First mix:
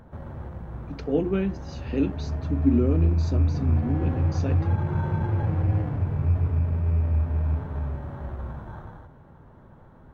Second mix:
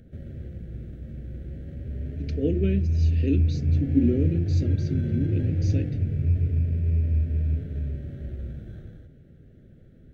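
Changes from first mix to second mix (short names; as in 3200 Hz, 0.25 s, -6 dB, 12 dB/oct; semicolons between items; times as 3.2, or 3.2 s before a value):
speech: entry +1.30 s; master: add Butterworth band-stop 980 Hz, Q 0.6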